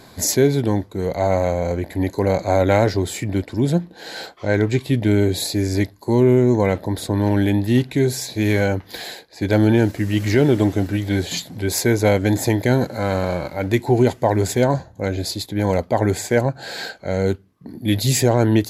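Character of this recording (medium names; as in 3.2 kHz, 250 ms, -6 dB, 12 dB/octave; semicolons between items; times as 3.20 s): noise floor -46 dBFS; spectral tilt -6.0 dB/octave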